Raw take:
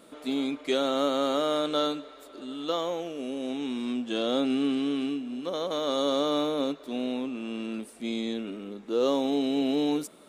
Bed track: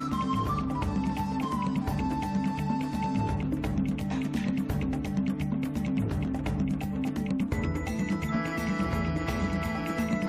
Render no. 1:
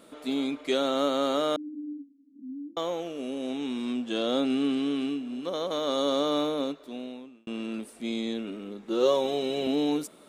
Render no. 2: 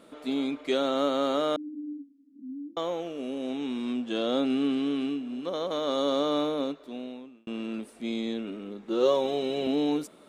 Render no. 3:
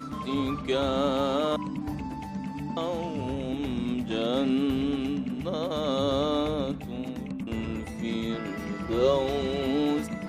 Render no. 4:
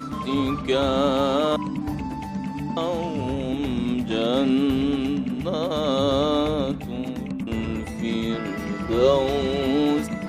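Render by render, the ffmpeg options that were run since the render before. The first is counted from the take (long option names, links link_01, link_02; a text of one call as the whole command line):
ffmpeg -i in.wav -filter_complex "[0:a]asettb=1/sr,asplit=3[link_01][link_02][link_03];[link_01]atrim=end=1.564[link_04];[link_02]atrim=start=1.56:end=2.77,asetpts=PTS-STARTPTS,afade=type=in:duration=0.004:curve=qsin,afade=type=out:start_time=1.206:duration=0.004:curve=qsin,asuperpass=centerf=250:order=8:qfactor=2.9[link_05];[link_03]atrim=start=2.766[link_06];[link_04][link_05]acrossfade=duration=0.004:curve1=hsin:curve2=qsin[link_07];[link_07][link_06]acrossfade=duration=0.004:curve1=qsin:curve2=hsin,asettb=1/sr,asplit=3[link_08][link_09][link_10];[link_08]atrim=end=8.884[link_11];[link_09]atrim=start=8.88:end=9.67,asetpts=PTS-STARTPTS,afade=type=in:duration=0.004:curve=qsin,afade=type=out:start_time=0.786:duration=0.004:curve=qsin,aecho=1:1:5.4:0.74,atrim=end_sample=34839[link_12];[link_10]atrim=start=9.666[link_13];[link_11][link_12]acrossfade=duration=0.004:curve1=hsin:curve2=qsin[link_14];[link_14][link_13]acrossfade=duration=0.004:curve1=qsin:curve2=hsin,asplit=2[link_15][link_16];[link_15]atrim=end=7.47,asetpts=PTS-STARTPTS,afade=type=out:start_time=6.46:duration=1.01[link_17];[link_16]atrim=start=7.47,asetpts=PTS-STARTPTS,afade=type=in:duration=0.004:curve=hsin[link_18];[link_17][link_18]concat=n=2:v=0:a=1" out.wav
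ffmpeg -i in.wav -af "highshelf=frequency=5700:gain=-7.5" out.wav
ffmpeg -i in.wav -i bed.wav -filter_complex "[1:a]volume=-6dB[link_01];[0:a][link_01]amix=inputs=2:normalize=0" out.wav
ffmpeg -i in.wav -af "volume=5dB" out.wav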